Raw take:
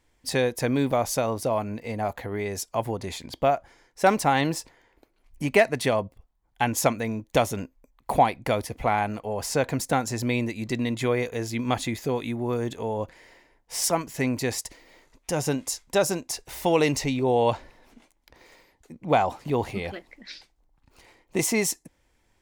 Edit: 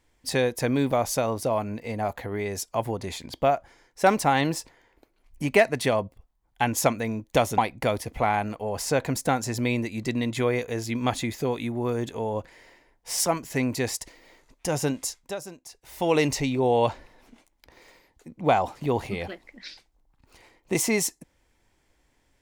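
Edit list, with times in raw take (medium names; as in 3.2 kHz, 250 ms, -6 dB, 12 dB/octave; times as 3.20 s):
7.58–8.22 s: delete
15.66–16.81 s: dip -13.5 dB, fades 0.35 s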